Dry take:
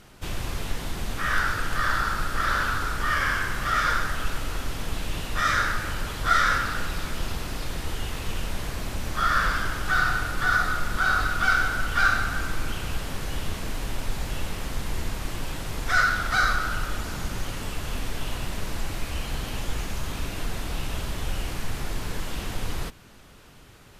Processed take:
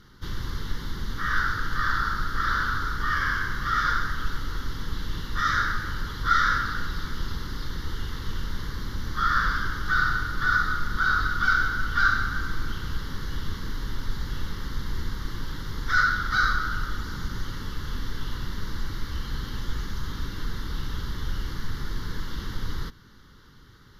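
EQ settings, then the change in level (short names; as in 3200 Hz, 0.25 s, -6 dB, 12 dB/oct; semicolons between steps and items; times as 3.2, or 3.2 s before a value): high shelf 10000 Hz -6.5 dB; fixed phaser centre 2500 Hz, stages 6; 0.0 dB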